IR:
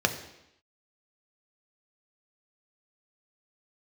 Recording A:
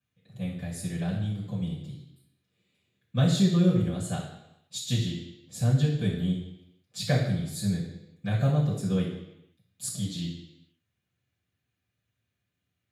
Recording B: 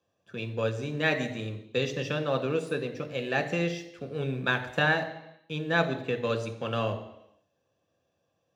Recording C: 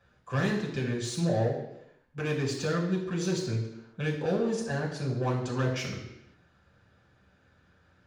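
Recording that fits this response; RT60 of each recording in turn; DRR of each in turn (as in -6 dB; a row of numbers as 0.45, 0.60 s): B; 0.85, 0.85, 0.85 s; -10.5, 5.0, -5.0 dB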